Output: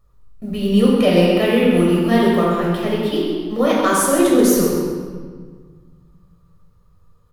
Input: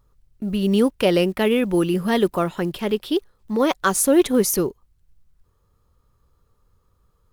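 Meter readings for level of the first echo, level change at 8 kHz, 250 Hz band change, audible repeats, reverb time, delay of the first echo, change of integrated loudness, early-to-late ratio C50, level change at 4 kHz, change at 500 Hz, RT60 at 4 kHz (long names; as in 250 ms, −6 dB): −7.0 dB, +1.0 dB, +5.0 dB, 1, 1.6 s, 131 ms, +4.5 dB, −1.0 dB, +3.0 dB, +4.0 dB, 1.2 s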